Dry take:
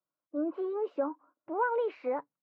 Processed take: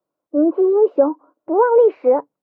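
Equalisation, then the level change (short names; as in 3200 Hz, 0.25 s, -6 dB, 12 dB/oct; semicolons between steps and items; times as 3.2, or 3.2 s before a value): low shelf 270 Hz +8 dB; bell 420 Hz +15 dB 1.9 oct; bell 840 Hz +5.5 dB 1.4 oct; 0.0 dB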